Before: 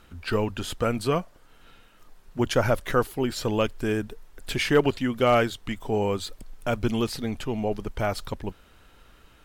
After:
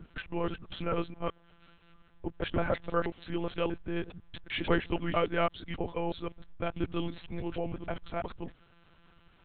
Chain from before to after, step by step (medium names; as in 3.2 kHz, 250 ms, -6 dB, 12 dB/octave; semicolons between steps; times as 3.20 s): time reversed locally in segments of 161 ms; monotone LPC vocoder at 8 kHz 170 Hz; trim -7 dB